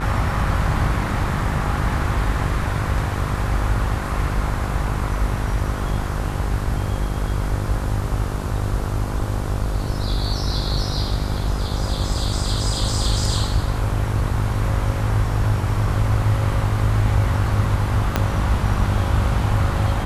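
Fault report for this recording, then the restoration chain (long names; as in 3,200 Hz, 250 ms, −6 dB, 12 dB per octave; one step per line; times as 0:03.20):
mains buzz 50 Hz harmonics 31 −25 dBFS
0:18.16: click −4 dBFS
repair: click removal
hum removal 50 Hz, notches 31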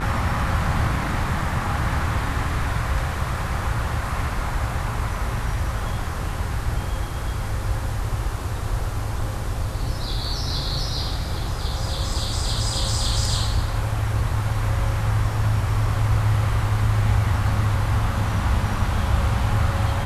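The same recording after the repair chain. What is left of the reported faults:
0:18.16: click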